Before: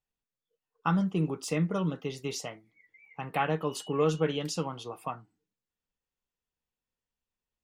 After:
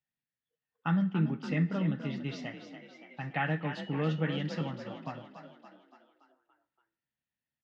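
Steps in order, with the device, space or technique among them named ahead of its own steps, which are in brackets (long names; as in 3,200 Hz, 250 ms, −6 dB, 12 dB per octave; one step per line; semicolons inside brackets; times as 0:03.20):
0:04.61–0:05.03: Butterworth low-pass 1,700 Hz 72 dB per octave
frequency-shifting delay pedal into a guitar cabinet (echo with shifted repeats 285 ms, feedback 55%, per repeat +36 Hz, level −9.5 dB; loudspeaker in its box 82–4,100 Hz, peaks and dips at 140 Hz +9 dB, 260 Hz +4 dB, 430 Hz −9 dB, 1,100 Hz −9 dB, 1,800 Hz +10 dB)
coupled-rooms reverb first 0.74 s, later 2 s, from −25 dB, DRR 15.5 dB
level −3.5 dB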